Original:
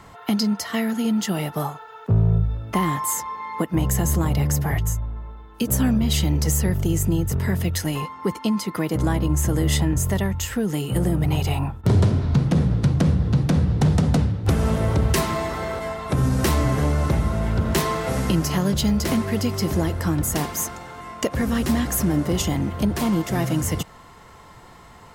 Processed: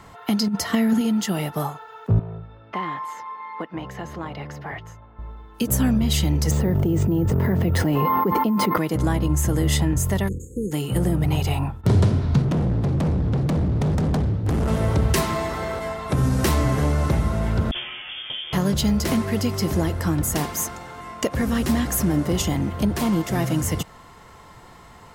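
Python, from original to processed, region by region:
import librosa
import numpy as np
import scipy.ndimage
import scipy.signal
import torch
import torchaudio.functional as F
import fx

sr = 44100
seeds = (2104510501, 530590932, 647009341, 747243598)

y = fx.chain(x, sr, fx.low_shelf(hz=360.0, db=9.0),
    fx.over_compress(threshold_db=-18.0, ratio=-0.5), at=(0.48, 1.01))
y = fx.chain(y, sr, fx.highpass(hz=740.0, slope=6),
    fx.air_absorb(metres=280.0), at=(2.19, 5.19))
y = fx.chain(y, sr, fx.bandpass_q(hz=380.0, q=0.5),
    fx.resample_bad(factor=3, down='none', up='hold'),
    fx.env_flatten(amount_pct=100), at=(6.51, 8.78))
y = fx.spec_flatten(y, sr, power=0.45, at=(10.27, 10.71), fade=0.02)
y = fx.brickwall_bandstop(y, sr, low_hz=530.0, high_hz=6400.0, at=(10.27, 10.71), fade=0.02)
y = fx.spacing_loss(y, sr, db_at_10k=22, at=(10.27, 10.71), fade=0.02)
y = fx.chain(y, sr, fx.tilt_shelf(db=3.5, hz=1200.0),
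    fx.overload_stage(gain_db=19.0), at=(12.42, 14.68))
y = fx.chain(y, sr, fx.lower_of_two(delay_ms=8.9),
    fx.comb_fb(f0_hz=76.0, decay_s=0.49, harmonics='all', damping=0.0, mix_pct=80),
    fx.freq_invert(carrier_hz=3400), at=(17.71, 18.53))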